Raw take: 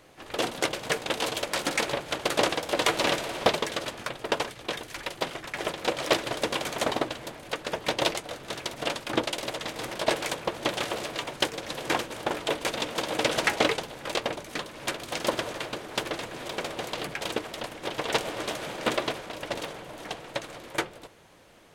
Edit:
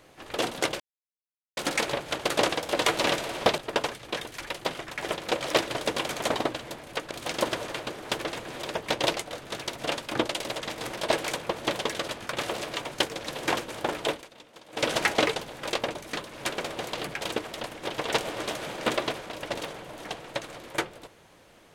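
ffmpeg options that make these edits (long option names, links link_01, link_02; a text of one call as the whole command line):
ffmpeg -i in.wav -filter_complex "[0:a]asplit=11[link_01][link_02][link_03][link_04][link_05][link_06][link_07][link_08][link_09][link_10][link_11];[link_01]atrim=end=0.8,asetpts=PTS-STARTPTS,afade=type=out:start_time=0.796:duration=0.004:curve=hsin[link_12];[link_02]atrim=start=0.8:end=1.57,asetpts=PTS-STARTPTS,volume=0[link_13];[link_03]atrim=start=1.57:end=3.582,asetpts=PTS-STARTPTS,afade=type=in:duration=0.004:curve=hsin[link_14];[link_04]atrim=start=4.138:end=7.672[link_15];[link_05]atrim=start=14.968:end=16.552[link_16];[link_06]atrim=start=7.668:end=10.792[link_17];[link_07]atrim=start=3.578:end=4.142[link_18];[link_08]atrim=start=10.788:end=12.66,asetpts=PTS-STARTPTS,afade=type=out:start_time=1.742:duration=0.13:silence=0.1[link_19];[link_09]atrim=start=12.66:end=13.14,asetpts=PTS-STARTPTS,volume=-20dB[link_20];[link_10]atrim=start=13.14:end=14.972,asetpts=PTS-STARTPTS,afade=type=in:duration=0.13:silence=0.1[link_21];[link_11]atrim=start=16.548[link_22];[link_12][link_13][link_14]concat=n=3:v=0:a=1[link_23];[link_23][link_15]acrossfade=duration=0.004:curve1=hsin:curve2=hsin[link_24];[link_24][link_16]acrossfade=duration=0.004:curve1=hsin:curve2=hsin[link_25];[link_25][link_17]acrossfade=duration=0.004:curve1=hsin:curve2=hsin[link_26];[link_26][link_18]acrossfade=duration=0.004:curve1=hsin:curve2=hsin[link_27];[link_19][link_20][link_21]concat=n=3:v=0:a=1[link_28];[link_27][link_28]acrossfade=duration=0.004:curve1=hsin:curve2=hsin[link_29];[link_29][link_22]acrossfade=duration=0.004:curve1=hsin:curve2=hsin" out.wav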